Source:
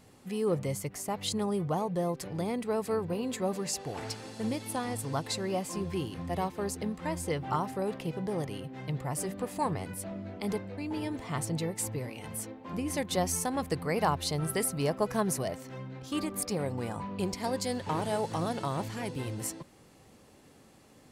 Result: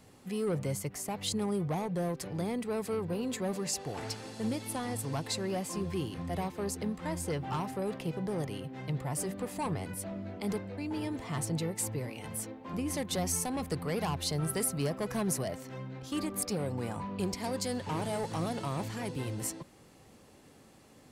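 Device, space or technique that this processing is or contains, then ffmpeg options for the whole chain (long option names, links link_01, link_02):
one-band saturation: -filter_complex "[0:a]acrossover=split=260|4500[link_01][link_02][link_03];[link_02]asoftclip=type=tanh:threshold=-30.5dB[link_04];[link_01][link_04][link_03]amix=inputs=3:normalize=0"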